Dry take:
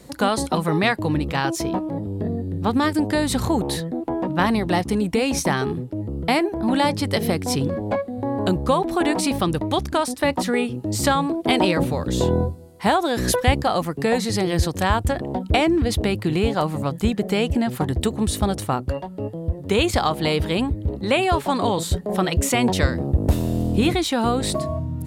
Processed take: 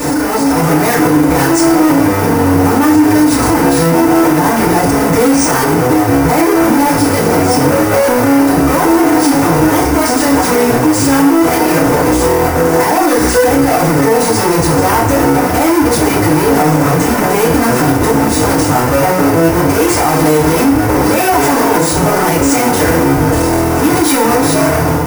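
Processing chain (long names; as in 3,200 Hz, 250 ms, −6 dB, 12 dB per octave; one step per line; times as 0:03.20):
sign of each sample alone
low-shelf EQ 200 Hz −9.5 dB
bad sample-rate conversion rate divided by 3×, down filtered, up hold
parametric band 3,300 Hz −14 dB 1 octave
notch filter 4,200 Hz, Q 13
feedback delay network reverb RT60 0.53 s, low-frequency decay 0.9×, high-frequency decay 0.95×, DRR −8.5 dB
brickwall limiter −8 dBFS, peak gain reduction 7 dB
automatic gain control gain up to 5 dB
level +2.5 dB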